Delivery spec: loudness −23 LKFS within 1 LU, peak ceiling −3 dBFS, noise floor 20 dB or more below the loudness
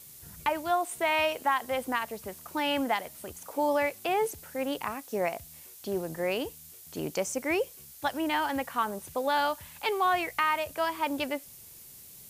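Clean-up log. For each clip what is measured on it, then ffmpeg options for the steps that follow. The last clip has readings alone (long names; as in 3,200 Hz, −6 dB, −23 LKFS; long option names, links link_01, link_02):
background noise floor −50 dBFS; target noise floor −51 dBFS; integrated loudness −30.5 LKFS; sample peak −14.5 dBFS; target loudness −23.0 LKFS
→ -af "afftdn=noise_reduction=6:noise_floor=-50"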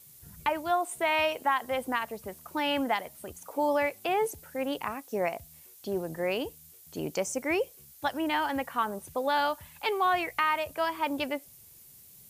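background noise floor −54 dBFS; integrated loudness −30.5 LKFS; sample peak −14.5 dBFS; target loudness −23.0 LKFS
→ -af "volume=7.5dB"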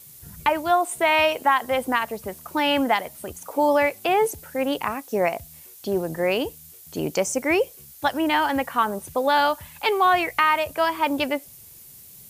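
integrated loudness −23.0 LKFS; sample peak −7.0 dBFS; background noise floor −46 dBFS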